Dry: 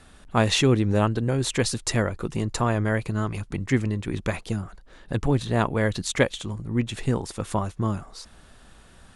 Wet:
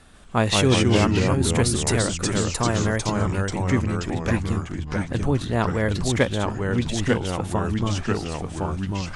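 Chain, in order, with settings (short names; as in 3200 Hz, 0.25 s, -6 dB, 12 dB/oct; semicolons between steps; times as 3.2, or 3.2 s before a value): 0.54–3.14 bell 9800 Hz +8 dB 0.4 oct; echoes that change speed 0.137 s, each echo -2 st, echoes 3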